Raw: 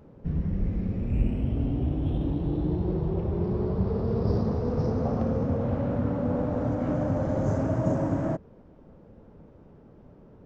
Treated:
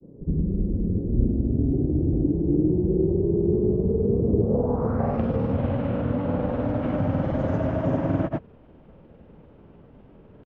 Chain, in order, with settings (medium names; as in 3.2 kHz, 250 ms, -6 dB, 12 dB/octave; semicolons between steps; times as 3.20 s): granulator, pitch spread up and down by 0 st; low-pass sweep 370 Hz -> 3 kHz, 4.37–5.24 s; trim +3 dB